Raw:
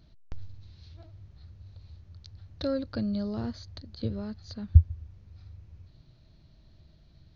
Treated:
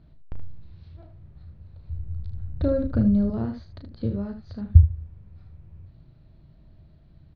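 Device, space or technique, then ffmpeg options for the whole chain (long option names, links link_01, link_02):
phone in a pocket: -filter_complex "[0:a]asettb=1/sr,asplit=3[link_01][link_02][link_03];[link_01]atrim=end=1.894[link_04];[link_02]atrim=start=1.89:end=3.3,asetpts=PTS-STARTPTS,afade=type=in:duration=0.004:curve=qsin,afade=type=out:start_time=1.406:duration=0.004:curve=qsin,aemphasis=mode=reproduction:type=bsi[link_05];[link_03]atrim=start=3.296[link_06];[link_04][link_05]acrossfade=duration=0.004:curve1=hsin:curve2=qsin[link_07];[link_07][link_06]acrossfade=duration=0.004:curve1=qsin:curve2=hsin,lowpass=3400,equalizer=frequency=160:width_type=o:width=0.41:gain=3,highshelf=frequency=2400:gain=-10.5,aecho=1:1:35|76:0.398|0.335,volume=3.5dB"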